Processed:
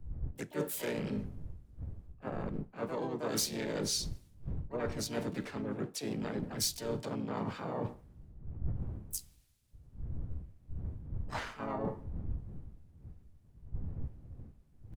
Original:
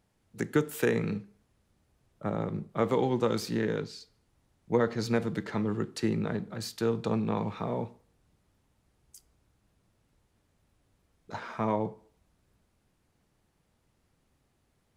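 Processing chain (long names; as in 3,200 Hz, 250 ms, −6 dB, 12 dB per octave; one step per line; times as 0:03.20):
wind on the microphone 110 Hz −41 dBFS
in parallel at −9 dB: soft clipping −18 dBFS, distortion −19 dB
on the sum: pitch-shifted copies added −3 semitones −10 dB, +4 semitones −2 dB, +12 semitones −12 dB
reversed playback
downward compressor 16 to 1, threshold −33 dBFS, peak gain reduction 19.5 dB
reversed playback
high-shelf EQ 5,700 Hz +5 dB
multiband upward and downward expander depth 70%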